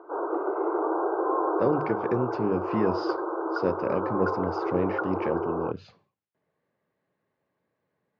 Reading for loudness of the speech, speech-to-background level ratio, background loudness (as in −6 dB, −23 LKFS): −30.0 LKFS, −1.0 dB, −29.0 LKFS